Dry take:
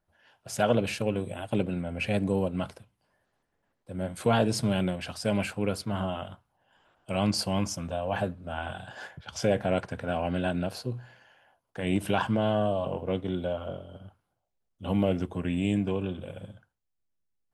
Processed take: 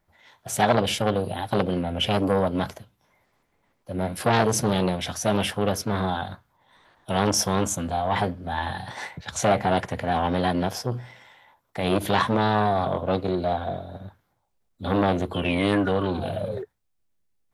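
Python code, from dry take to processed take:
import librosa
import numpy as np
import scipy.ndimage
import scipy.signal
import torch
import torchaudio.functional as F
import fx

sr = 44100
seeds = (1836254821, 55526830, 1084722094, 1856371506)

y = fx.spec_paint(x, sr, seeds[0], shape='fall', start_s=15.34, length_s=1.3, low_hz=360.0, high_hz=2700.0, level_db=-36.0)
y = fx.formant_shift(y, sr, semitones=3)
y = fx.transformer_sat(y, sr, knee_hz=1000.0)
y = y * librosa.db_to_amplitude(7.5)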